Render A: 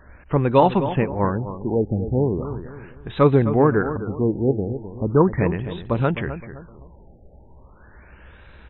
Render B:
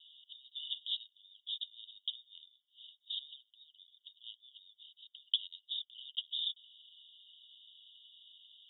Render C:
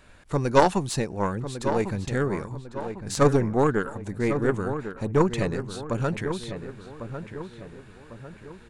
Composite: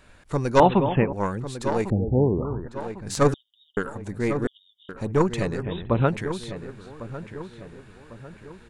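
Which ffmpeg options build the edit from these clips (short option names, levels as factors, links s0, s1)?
-filter_complex "[0:a]asplit=3[s0][s1][s2];[1:a]asplit=2[s3][s4];[2:a]asplit=6[s5][s6][s7][s8][s9][s10];[s5]atrim=end=0.602[s11];[s0]atrim=start=0.598:end=1.132[s12];[s6]atrim=start=1.128:end=1.902[s13];[s1]atrim=start=1.898:end=2.682[s14];[s7]atrim=start=2.678:end=3.342[s15];[s3]atrim=start=3.338:end=3.772[s16];[s8]atrim=start=3.768:end=4.472[s17];[s4]atrim=start=4.468:end=4.892[s18];[s9]atrim=start=4.888:end=5.67[s19];[s2]atrim=start=5.61:end=6.12[s20];[s10]atrim=start=6.06[s21];[s11][s12]acrossfade=d=0.004:c1=hsin:c2=hsin[s22];[s22][s13]acrossfade=d=0.004:c1=hsin:c2=hsin[s23];[s23][s14]acrossfade=d=0.004:c1=hsin:c2=hsin[s24];[s24][s15]acrossfade=d=0.004:c1=hsin:c2=hsin[s25];[s25][s16]acrossfade=d=0.004:c1=hsin:c2=hsin[s26];[s26][s17]acrossfade=d=0.004:c1=hsin:c2=hsin[s27];[s27][s18]acrossfade=d=0.004:c1=hsin:c2=hsin[s28];[s28][s19]acrossfade=d=0.004:c1=hsin:c2=hsin[s29];[s29][s20]acrossfade=d=0.06:c1=tri:c2=tri[s30];[s30][s21]acrossfade=d=0.06:c1=tri:c2=tri"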